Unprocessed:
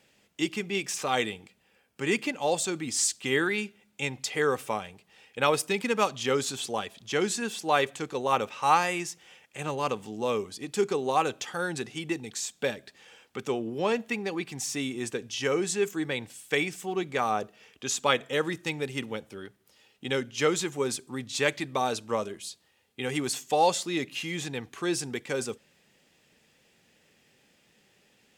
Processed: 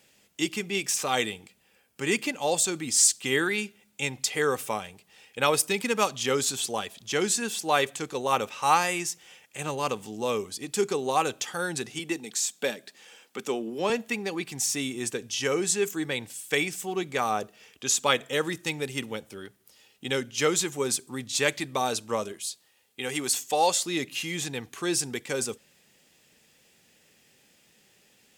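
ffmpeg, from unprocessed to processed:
ffmpeg -i in.wav -filter_complex "[0:a]asettb=1/sr,asplit=3[link_01][link_02][link_03];[link_01]atrim=end=11.994[link_04];[link_02]atrim=start=11.99:end=13.9,asetpts=PTS-STARTPTS,afade=type=in:duration=0.004:curve=qsin,afade=type=out:start_time=1.906:duration=0.004:curve=qsin,highpass=frequency=170:width=0.5412,highpass=frequency=170:width=1.3066[link_05];[link_03]atrim=start=13.896[link_06];[link_04][link_05]acrossfade=duration=0.004:curve1=hsin:curve2=qsin[link_07];[link_07][link_06]acrossfade=duration=0.004:curve1=qsin:curve2=hsin,asettb=1/sr,asplit=3[link_08][link_09][link_10];[link_08]atrim=end=22.324[link_11];[link_09]atrim=start=22.32:end=23.86,asetpts=PTS-STARTPTS,afade=type=in:duration=0.004:curve=qsin,afade=type=out:start_time=1.536:duration=0.004:curve=qsin,lowshelf=frequency=200:gain=-9[link_12];[link_10]atrim=start=23.856[link_13];[link_11][link_12]acrossfade=duration=0.004:curve1=hsin:curve2=qsin[link_14];[link_14][link_13]acrossfade=duration=0.004:curve1=qsin:curve2=hsin,highshelf=frequency=5500:gain=10" out.wav

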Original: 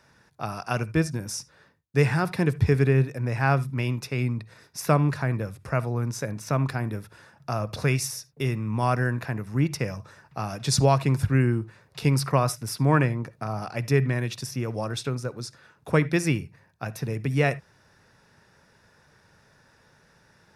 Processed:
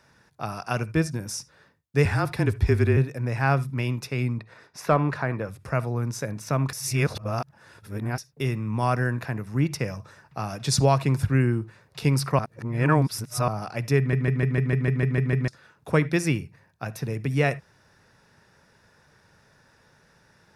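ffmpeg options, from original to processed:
ffmpeg -i in.wav -filter_complex "[0:a]asettb=1/sr,asplit=3[link_01][link_02][link_03];[link_01]atrim=end=2.054[link_04];[link_02]atrim=start=2.05:end=2.97,asetpts=PTS-STARTPTS,afade=type=in:duration=0.004:curve=qsin,afade=type=out:start_time=0.916:duration=0.004:curve=qsin,afreqshift=-30[link_05];[link_03]atrim=start=2.966[link_06];[link_04][link_05]acrossfade=duration=0.004:curve1=hsin:curve2=qsin[link_07];[link_07][link_06]acrossfade=duration=0.004:curve1=qsin:curve2=hsin,asettb=1/sr,asplit=3[link_08][link_09][link_10];[link_08]atrim=end=4.394[link_11];[link_09]atrim=start=4.39:end=5.49,asetpts=PTS-STARTPTS,afade=type=in:duration=0.004:curve=qsin,afade=type=out:start_time=1.096:duration=0.004:curve=qsin,asplit=2[link_12][link_13];[link_13]highpass=frequency=720:poles=1,volume=12dB,asoftclip=type=tanh:threshold=-5.5dB[link_14];[link_12][link_14]amix=inputs=2:normalize=0,lowpass=frequency=1300:poles=1,volume=-6dB[link_15];[link_10]atrim=start=5.486[link_16];[link_11][link_15]acrossfade=duration=0.004:curve1=hsin:curve2=qsin[link_17];[link_17][link_16]acrossfade=duration=0.004:curve1=qsin:curve2=hsin,asplit=15[link_18][link_19][link_20][link_21][link_22][link_23][link_24][link_25][link_26][link_27][link_28][link_29][link_30][link_31][link_32];[link_18]atrim=end=6.732[link_33];[link_19]atrim=start=6.728:end=8.182,asetpts=PTS-STARTPTS,areverse[link_34];[link_20]atrim=start=8.178:end=12.392[link_35];[link_21]atrim=start=12.388:end=13.482,asetpts=PTS-STARTPTS,areverse[link_36];[link_22]atrim=start=13.478:end=14.132[link_37];[link_23]atrim=start=13.978:end=14.132[link_38];[link_24]atrim=start=13.978:end=14.132[link_39];[link_25]atrim=start=13.978:end=14.132[link_40];[link_26]atrim=start=13.978:end=14.132[link_41];[link_27]atrim=start=13.978:end=14.132[link_42];[link_28]atrim=start=13.978:end=14.132[link_43];[link_29]atrim=start=13.978:end=14.132[link_44];[link_30]atrim=start=13.978:end=14.132[link_45];[link_31]atrim=start=13.978:end=14.132[link_46];[link_32]atrim=start=15.478[link_47];[link_33][link_34]acrossfade=duration=0.004:curve1=hsin:curve2=hsin[link_48];[link_48][link_35]acrossfade=duration=0.004:curve1=hsin:curve2=hsin[link_49];[link_49][link_36]acrossfade=duration=0.004:curve1=hsin:curve2=hsin[link_50];[link_50][link_37]acrossfade=duration=0.004:curve1=hsin:curve2=hsin[link_51];[link_51][link_38]acrossfade=duration=0.004:curve1=hsin:curve2=hsin[link_52];[link_52][link_39]acrossfade=duration=0.004:curve1=hsin:curve2=hsin[link_53];[link_53][link_40]acrossfade=duration=0.004:curve1=hsin:curve2=hsin[link_54];[link_54][link_41]acrossfade=duration=0.004:curve1=hsin:curve2=hsin[link_55];[link_55][link_42]acrossfade=duration=0.004:curve1=hsin:curve2=hsin[link_56];[link_56][link_43]acrossfade=duration=0.004:curve1=hsin:curve2=hsin[link_57];[link_57][link_44]acrossfade=duration=0.004:curve1=hsin:curve2=hsin[link_58];[link_58][link_45]acrossfade=duration=0.004:curve1=hsin:curve2=hsin[link_59];[link_59][link_46]acrossfade=duration=0.004:curve1=hsin:curve2=hsin[link_60];[link_60][link_47]acrossfade=duration=0.004:curve1=hsin:curve2=hsin" out.wav

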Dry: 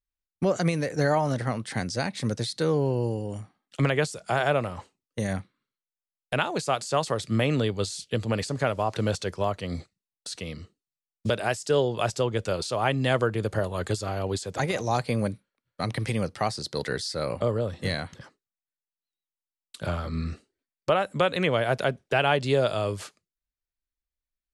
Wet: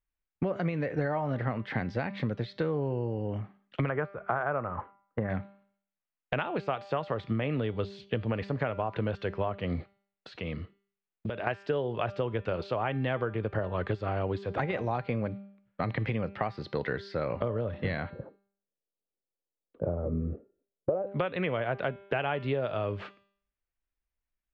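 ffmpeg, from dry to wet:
ffmpeg -i in.wav -filter_complex "[0:a]asettb=1/sr,asplit=3[link_01][link_02][link_03];[link_01]atrim=end=3.894[link_04];[link_02]atrim=start=3.89:end=5.3,asetpts=PTS-STARTPTS,afade=type=in:duration=0.004:curve=qsin,afade=type=out:start_time=1.406:duration=0.004:curve=qsin,lowpass=frequency=1300:width_type=q:width=2.4[link_05];[link_03]atrim=start=5.296[link_06];[link_04][link_05]acrossfade=duration=0.004:curve1=hsin:curve2=qsin[link_07];[link_07][link_06]acrossfade=duration=0.004:curve1=qsin:curve2=hsin,asettb=1/sr,asplit=3[link_08][link_09][link_10];[link_08]atrim=end=10.294[link_11];[link_09]atrim=start=10.29:end=11.47,asetpts=PTS-STARTPTS,afade=type=in:duration=0.004:curve=qsin,afade=type=out:start_time=1.176:duration=0.004:curve=qsin,acompressor=threshold=-33dB:ratio=6:attack=3.2:release=140:knee=1:detection=peak[link_12];[link_10]atrim=start=11.466[link_13];[link_11][link_12]acrossfade=duration=0.004:curve1=hsin:curve2=qsin[link_14];[link_14][link_13]acrossfade=duration=0.004:curve1=qsin:curve2=hsin,asettb=1/sr,asplit=3[link_15][link_16][link_17];[link_15]atrim=end=18.104[link_18];[link_16]atrim=start=18.1:end=21.07,asetpts=PTS-STARTPTS,afade=type=in:duration=0.004:curve=qsin,afade=type=out:start_time=2.966:duration=0.004:curve=qsin,lowpass=frequency=500:width_type=q:width=3[link_19];[link_17]atrim=start=21.066[link_20];[link_18][link_19]acrossfade=duration=0.004:curve1=hsin:curve2=qsin[link_21];[link_21][link_20]acrossfade=duration=0.004:curve1=qsin:curve2=hsin,lowpass=frequency=2800:width=0.5412,lowpass=frequency=2800:width=1.3066,bandreject=frequency=198.4:width_type=h:width=4,bandreject=frequency=396.8:width_type=h:width=4,bandreject=frequency=595.2:width_type=h:width=4,bandreject=frequency=793.6:width_type=h:width=4,bandreject=frequency=992:width_type=h:width=4,bandreject=frequency=1190.4:width_type=h:width=4,bandreject=frequency=1388.8:width_type=h:width=4,bandreject=frequency=1587.2:width_type=h:width=4,bandreject=frequency=1785.6:width_type=h:width=4,bandreject=frequency=1984:width_type=h:width=4,bandreject=frequency=2182.4:width_type=h:width=4,bandreject=frequency=2380.8:width_type=h:width=4,bandreject=frequency=2579.2:width_type=h:width=4,bandreject=frequency=2777.6:width_type=h:width=4,bandreject=frequency=2976:width_type=h:width=4,bandreject=frequency=3174.4:width_type=h:width=4,bandreject=frequency=3372.8:width_type=h:width=4,bandreject=frequency=3571.2:width_type=h:width=4,bandreject=frequency=3769.6:width_type=h:width=4,bandreject=frequency=3968:width_type=h:width=4,bandreject=frequency=4166.4:width_type=h:width=4,bandreject=frequency=4364.8:width_type=h:width=4,bandreject=frequency=4563.2:width_type=h:width=4,bandreject=frequency=4761.6:width_type=h:width=4,bandreject=frequency=4960:width_type=h:width=4,bandreject=frequency=5158.4:width_type=h:width=4,bandreject=frequency=5356.8:width_type=h:width=4,bandreject=frequency=5555.2:width_type=h:width=4,bandreject=frequency=5753.6:width_type=h:width=4,bandreject=frequency=5952:width_type=h:width=4,bandreject=frequency=6150.4:width_type=h:width=4,bandreject=frequency=6348.8:width_type=h:width=4,bandreject=frequency=6547.2:width_type=h:width=4,bandreject=frequency=6745.6:width_type=h:width=4,bandreject=frequency=6944:width_type=h:width=4,bandreject=frequency=7142.4:width_type=h:width=4,bandreject=frequency=7340.8:width_type=h:width=4,bandreject=frequency=7539.2:width_type=h:width=4,bandreject=frequency=7737.6:width_type=h:width=4,bandreject=frequency=7936:width_type=h:width=4,acompressor=threshold=-30dB:ratio=6,volume=3dB" out.wav

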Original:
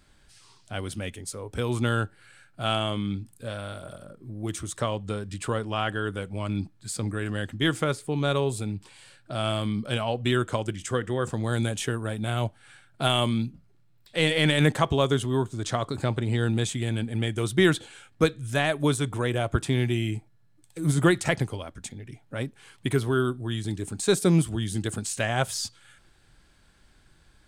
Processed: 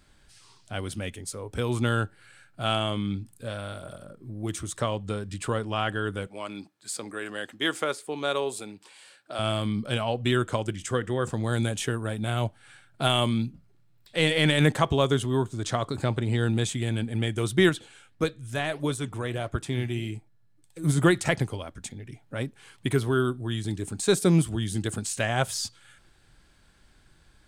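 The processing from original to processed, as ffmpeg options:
ffmpeg -i in.wav -filter_complex "[0:a]asettb=1/sr,asplit=3[link_01][link_02][link_03];[link_01]atrim=end=6.274[link_04];[link_02]atrim=start=6.27:end=9.39,asetpts=PTS-STARTPTS,afade=type=in:duration=0.004:curve=qsin,afade=type=out:start_time=3.116:duration=0.004:curve=qsin,highpass=380[link_05];[link_03]atrim=start=9.386[link_06];[link_04][link_05]acrossfade=duration=0.004:curve1=hsin:curve2=qsin[link_07];[link_07][link_06]acrossfade=duration=0.004:curve1=qsin:curve2=hsin,asettb=1/sr,asplit=3[link_08][link_09][link_10];[link_08]atrim=end=17.694[link_11];[link_09]atrim=start=17.69:end=20.84,asetpts=PTS-STARTPTS,afade=type=in:duration=0.004:curve=qsin,afade=type=out:start_time=3.146:duration=0.004:curve=qsin,flanger=delay=1.6:depth=8.3:regen=82:speed=1.6:shape=sinusoidal[link_12];[link_10]atrim=start=20.836[link_13];[link_11][link_12]acrossfade=duration=0.004:curve1=hsin:curve2=qsin[link_14];[link_14][link_13]acrossfade=duration=0.004:curve1=qsin:curve2=hsin" out.wav

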